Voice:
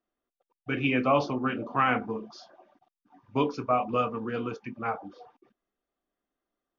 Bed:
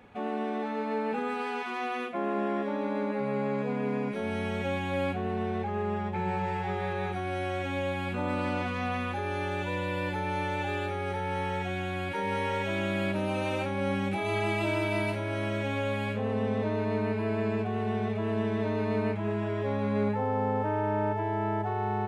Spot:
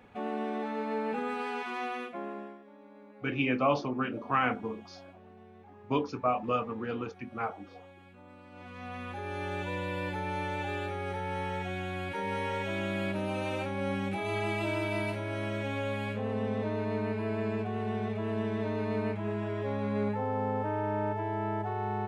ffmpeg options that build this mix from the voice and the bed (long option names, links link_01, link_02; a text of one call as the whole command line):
ffmpeg -i stem1.wav -i stem2.wav -filter_complex "[0:a]adelay=2550,volume=-3dB[link_01];[1:a]volume=17.5dB,afade=type=out:start_time=1.81:duration=0.78:silence=0.0944061,afade=type=in:start_time=8.5:duration=1.05:silence=0.105925[link_02];[link_01][link_02]amix=inputs=2:normalize=0" out.wav